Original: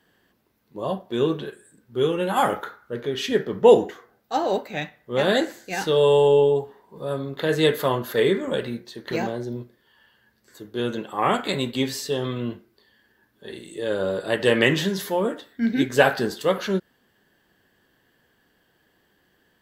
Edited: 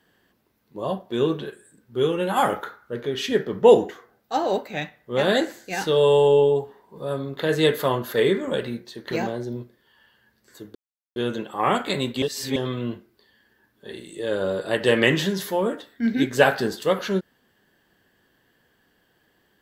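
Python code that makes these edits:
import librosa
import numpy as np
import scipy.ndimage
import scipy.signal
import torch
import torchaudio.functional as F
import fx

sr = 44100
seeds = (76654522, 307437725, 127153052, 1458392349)

y = fx.edit(x, sr, fx.insert_silence(at_s=10.75, length_s=0.41),
    fx.reverse_span(start_s=11.81, length_s=0.34), tone=tone)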